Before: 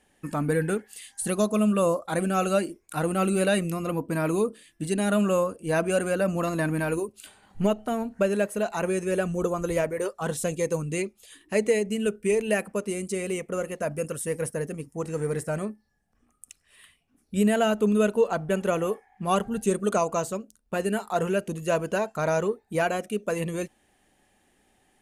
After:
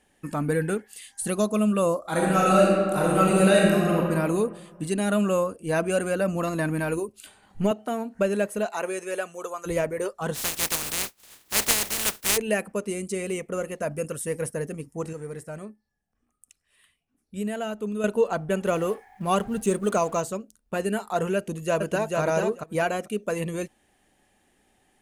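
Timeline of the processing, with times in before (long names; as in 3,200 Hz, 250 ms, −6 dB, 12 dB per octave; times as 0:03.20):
0:02.00–0:03.98: thrown reverb, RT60 1.8 s, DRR −4 dB
0:07.71–0:08.15: high-pass filter 200 Hz
0:08.65–0:09.65: high-pass filter 330 Hz → 880 Hz
0:10.34–0:12.36: compressing power law on the bin magnitudes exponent 0.14
0:15.13–0:18.04: clip gain −8 dB
0:18.66–0:20.21: mu-law and A-law mismatch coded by mu
0:21.36–0:22.19: delay throw 440 ms, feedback 10%, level −3 dB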